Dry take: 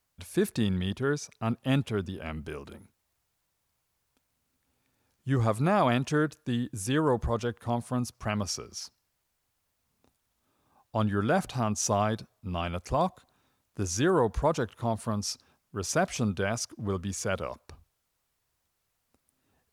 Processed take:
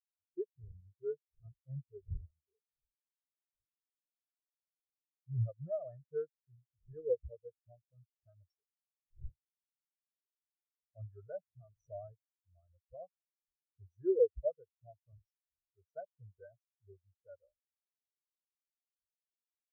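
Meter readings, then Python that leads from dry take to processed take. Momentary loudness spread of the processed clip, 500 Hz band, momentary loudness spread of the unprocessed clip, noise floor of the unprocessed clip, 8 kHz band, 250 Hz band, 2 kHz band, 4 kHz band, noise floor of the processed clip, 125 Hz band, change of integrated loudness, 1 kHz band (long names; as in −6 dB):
21 LU, −8.5 dB, 12 LU, −78 dBFS, below −40 dB, −21.0 dB, below −35 dB, below −40 dB, below −85 dBFS, −14.5 dB, −10.0 dB, −29.5 dB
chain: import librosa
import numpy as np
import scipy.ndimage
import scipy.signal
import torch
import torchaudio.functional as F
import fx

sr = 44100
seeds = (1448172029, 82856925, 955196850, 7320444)

y = fx.dmg_wind(x, sr, seeds[0], corner_hz=270.0, level_db=-41.0)
y = fx.fixed_phaser(y, sr, hz=910.0, stages=6)
y = fx.spectral_expand(y, sr, expansion=4.0)
y = F.gain(torch.from_numpy(y), -3.0).numpy()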